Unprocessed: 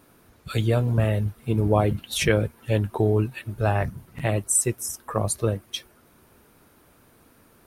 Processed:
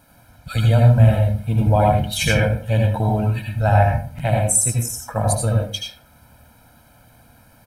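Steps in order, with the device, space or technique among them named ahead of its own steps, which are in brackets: microphone above a desk (comb 1.3 ms, depth 89%; reverb RT60 0.45 s, pre-delay 71 ms, DRR 0 dB)

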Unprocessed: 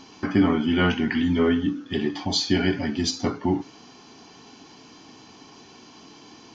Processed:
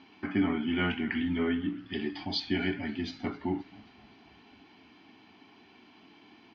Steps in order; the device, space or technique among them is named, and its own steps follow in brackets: frequency-shifting delay pedal into a guitar cabinet (frequency-shifting echo 0.264 s, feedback 61%, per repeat -73 Hz, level -22 dB; speaker cabinet 84–3500 Hz, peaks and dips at 140 Hz -10 dB, 500 Hz -10 dB, 1100 Hz -5 dB, 2200 Hz +5 dB); 1.78–2.4 bell 4900 Hz +13 dB 0.39 oct; gain -7 dB

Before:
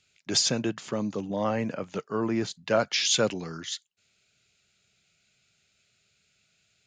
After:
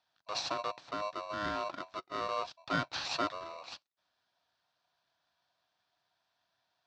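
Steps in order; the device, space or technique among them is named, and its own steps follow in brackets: ring modulator pedal into a guitar cabinet (polarity switched at an audio rate 830 Hz; speaker cabinet 86–4400 Hz, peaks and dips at 220 Hz -8 dB, 430 Hz -10 dB, 750 Hz +4 dB, 2100 Hz -9 dB, 3000 Hz -7 dB); gain -6.5 dB

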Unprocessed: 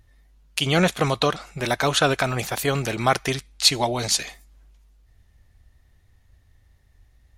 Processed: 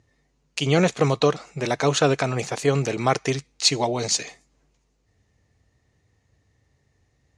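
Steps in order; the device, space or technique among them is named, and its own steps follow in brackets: car door speaker (speaker cabinet 110–7900 Hz, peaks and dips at 140 Hz +6 dB, 290 Hz +4 dB, 450 Hz +7 dB, 1500 Hz -4 dB, 3400 Hz -5 dB, 6600 Hz +4 dB); gain -1.5 dB

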